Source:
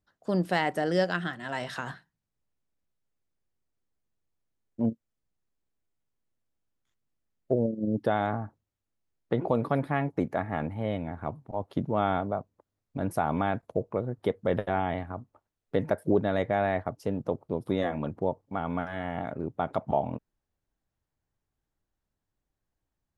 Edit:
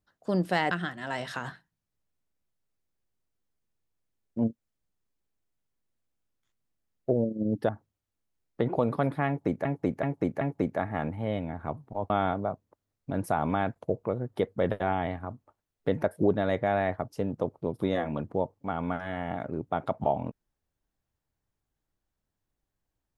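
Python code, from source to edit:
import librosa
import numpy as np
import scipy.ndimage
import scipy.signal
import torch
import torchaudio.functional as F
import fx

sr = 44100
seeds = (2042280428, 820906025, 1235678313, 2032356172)

y = fx.edit(x, sr, fx.cut(start_s=0.71, length_s=0.42),
    fx.cut(start_s=8.11, length_s=0.3),
    fx.repeat(start_s=9.99, length_s=0.38, count=4),
    fx.cut(start_s=11.68, length_s=0.29), tone=tone)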